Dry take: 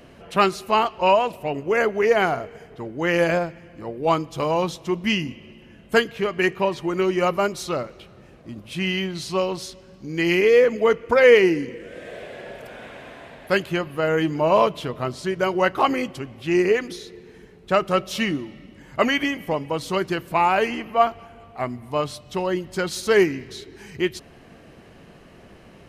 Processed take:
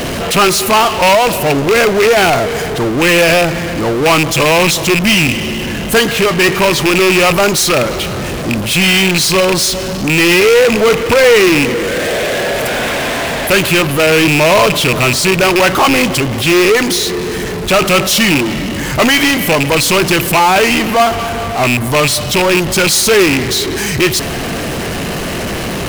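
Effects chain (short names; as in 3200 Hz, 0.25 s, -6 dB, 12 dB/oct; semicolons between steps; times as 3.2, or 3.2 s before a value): rattling part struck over -32 dBFS, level -13 dBFS; high shelf 4000 Hz +9.5 dB; power-law curve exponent 0.35; gain -1 dB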